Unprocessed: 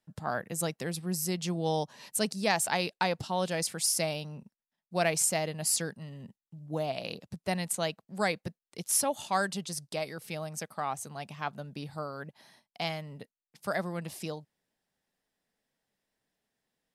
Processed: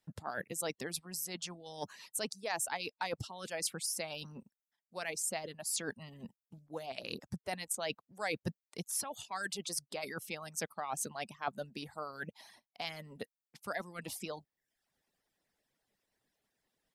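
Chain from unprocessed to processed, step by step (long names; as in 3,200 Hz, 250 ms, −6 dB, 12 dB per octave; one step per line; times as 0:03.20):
reversed playback
downward compressor 5 to 1, threshold −39 dBFS, peak gain reduction 15 dB
reversed playback
reverb reduction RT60 0.59 s
harmonic and percussive parts rebalanced harmonic −13 dB
level +6 dB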